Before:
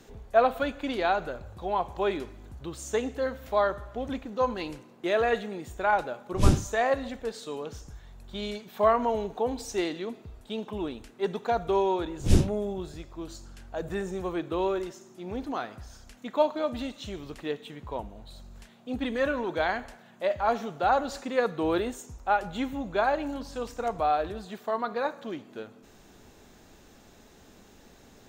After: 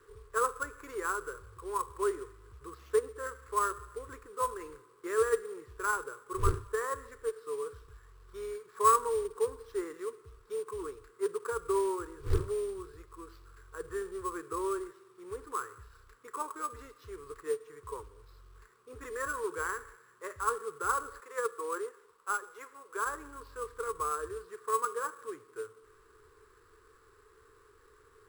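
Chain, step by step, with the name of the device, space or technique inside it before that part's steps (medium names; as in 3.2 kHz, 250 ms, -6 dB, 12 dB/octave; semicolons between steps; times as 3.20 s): FFT filter 110 Hz 0 dB, 220 Hz -24 dB, 440 Hz +11 dB, 690 Hz -28 dB, 1.1 kHz +14 dB, 1.7 kHz +5 dB, 3.3 kHz -16 dB, 4.8 kHz -4 dB, 7.4 kHz -17 dB, 13 kHz -3 dB; low-pass that closes with the level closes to 1.7 kHz, closed at -22 dBFS; 21.20–23.06 s: Chebyshev band-pass 530–3900 Hz, order 2; early companding sampler (sample-rate reducer 9.1 kHz, jitter 0%; companded quantiser 6-bit); trim -8.5 dB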